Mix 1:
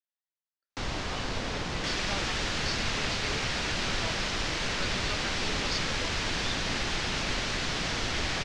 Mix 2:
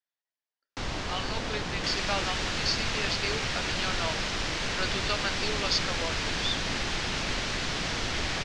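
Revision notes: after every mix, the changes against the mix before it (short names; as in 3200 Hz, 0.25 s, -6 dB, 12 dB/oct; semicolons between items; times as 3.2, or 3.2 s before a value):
speech +8.0 dB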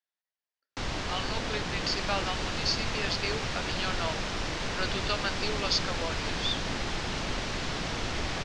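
second sound -8.0 dB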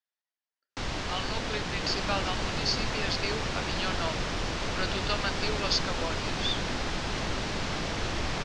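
second sound: remove HPF 1500 Hz 24 dB/oct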